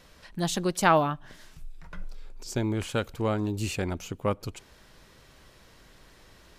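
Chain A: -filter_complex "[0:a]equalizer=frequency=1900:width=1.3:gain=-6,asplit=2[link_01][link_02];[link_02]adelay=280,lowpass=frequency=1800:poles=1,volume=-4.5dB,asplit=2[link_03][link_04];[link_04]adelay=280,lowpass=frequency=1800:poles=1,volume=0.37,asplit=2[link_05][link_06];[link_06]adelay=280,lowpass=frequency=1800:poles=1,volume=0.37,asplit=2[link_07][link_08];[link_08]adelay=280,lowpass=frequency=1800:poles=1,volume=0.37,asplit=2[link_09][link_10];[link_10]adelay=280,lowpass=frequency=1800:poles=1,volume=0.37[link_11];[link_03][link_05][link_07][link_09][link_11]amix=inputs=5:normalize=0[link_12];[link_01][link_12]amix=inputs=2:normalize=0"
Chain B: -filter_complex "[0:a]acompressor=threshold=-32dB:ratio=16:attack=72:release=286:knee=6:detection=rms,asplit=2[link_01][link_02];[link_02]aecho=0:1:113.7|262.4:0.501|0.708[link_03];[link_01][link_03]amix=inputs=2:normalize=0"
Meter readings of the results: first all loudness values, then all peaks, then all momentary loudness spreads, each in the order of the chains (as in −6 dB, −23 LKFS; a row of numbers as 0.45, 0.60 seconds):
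−28.5, −35.0 LKFS; −10.5, −18.5 dBFS; 21, 21 LU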